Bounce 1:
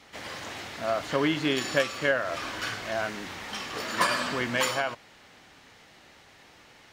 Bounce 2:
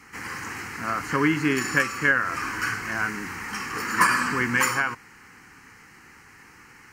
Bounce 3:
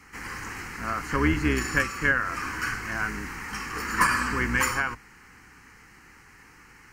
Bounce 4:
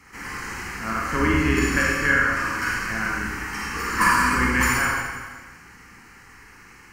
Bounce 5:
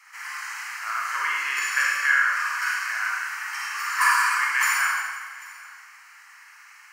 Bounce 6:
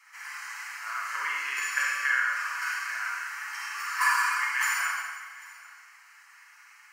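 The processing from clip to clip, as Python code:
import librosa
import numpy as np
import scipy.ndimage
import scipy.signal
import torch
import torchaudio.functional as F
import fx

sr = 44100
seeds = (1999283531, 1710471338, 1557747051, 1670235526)

y1 = fx.low_shelf(x, sr, hz=140.0, db=-3.5)
y1 = fx.fixed_phaser(y1, sr, hz=1500.0, stages=4)
y1 = y1 * 10.0 ** (8.0 / 20.0)
y2 = fx.octave_divider(y1, sr, octaves=2, level_db=0.0)
y2 = y2 * 10.0 ** (-2.5 / 20.0)
y3 = fx.rev_schroeder(y2, sr, rt60_s=1.4, comb_ms=32, drr_db=-3.0)
y4 = scipy.signal.sosfilt(scipy.signal.butter(4, 1000.0, 'highpass', fs=sr, output='sos'), y3)
y4 = y4 + 10.0 ** (-21.5 / 20.0) * np.pad(y4, (int(791 * sr / 1000.0), 0))[:len(y4)]
y5 = y4 + 0.49 * np.pad(y4, (int(7.0 * sr / 1000.0), 0))[:len(y4)]
y5 = y5 * 10.0 ** (-6.0 / 20.0)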